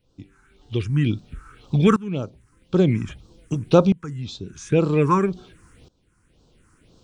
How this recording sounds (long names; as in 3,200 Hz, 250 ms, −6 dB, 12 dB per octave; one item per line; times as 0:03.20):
phaser sweep stages 4, 1.9 Hz, lowest notch 570–2,000 Hz
tremolo saw up 0.51 Hz, depth 90%